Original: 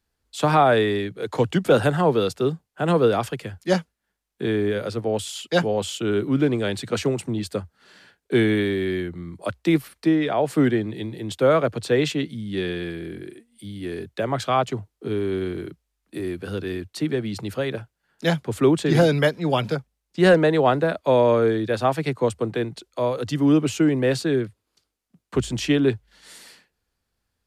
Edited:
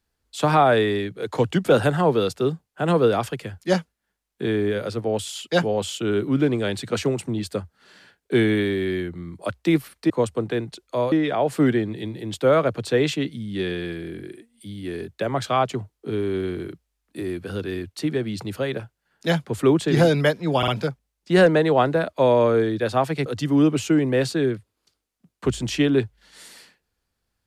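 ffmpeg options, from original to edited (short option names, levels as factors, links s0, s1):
-filter_complex "[0:a]asplit=6[s0][s1][s2][s3][s4][s5];[s0]atrim=end=10.102[s6];[s1]atrim=start=22.138:end=23.162[s7];[s2]atrim=start=10.098:end=19.612[s8];[s3]atrim=start=19.558:end=19.612[s9];[s4]atrim=start=19.558:end=22.142[s10];[s5]atrim=start=23.158[s11];[s6][s7]acrossfade=d=0.004:c1=hsin:c2=hsin[s12];[s12][s8]acrossfade=d=0.004:c1=hsin:c2=hsin[s13];[s13][s9]acrossfade=d=0.004:c1=hsin:c2=hsin[s14];[s14][s10]acrossfade=d=0.004:c1=hsin:c2=hsin[s15];[s15][s11]acrossfade=d=0.004:c1=hsin:c2=hsin"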